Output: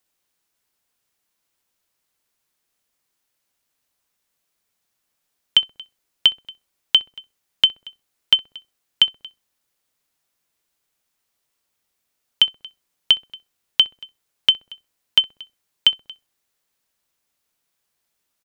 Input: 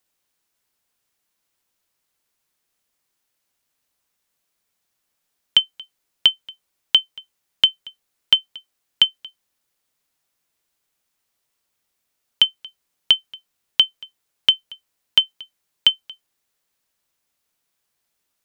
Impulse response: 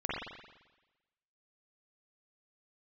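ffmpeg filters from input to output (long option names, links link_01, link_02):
-filter_complex "[0:a]asplit=2[link_01][link_02];[link_02]adelay=64,lowpass=frequency=810:poles=1,volume=-16dB,asplit=2[link_03][link_04];[link_04]adelay=64,lowpass=frequency=810:poles=1,volume=0.51,asplit=2[link_05][link_06];[link_06]adelay=64,lowpass=frequency=810:poles=1,volume=0.51,asplit=2[link_07][link_08];[link_08]adelay=64,lowpass=frequency=810:poles=1,volume=0.51,asplit=2[link_09][link_10];[link_10]adelay=64,lowpass=frequency=810:poles=1,volume=0.51[link_11];[link_01][link_03][link_05][link_07][link_09][link_11]amix=inputs=6:normalize=0"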